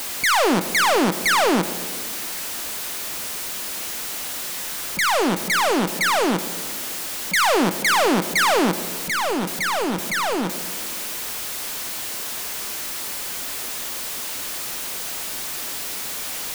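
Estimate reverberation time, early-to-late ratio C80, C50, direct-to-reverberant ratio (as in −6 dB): 1.7 s, 14.5 dB, 13.5 dB, 11.5 dB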